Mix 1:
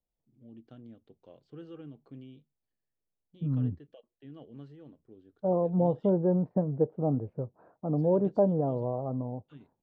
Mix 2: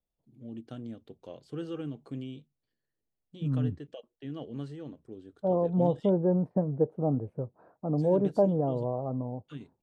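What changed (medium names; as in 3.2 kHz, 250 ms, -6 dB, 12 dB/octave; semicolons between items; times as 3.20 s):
first voice +8.5 dB; master: remove distance through air 140 m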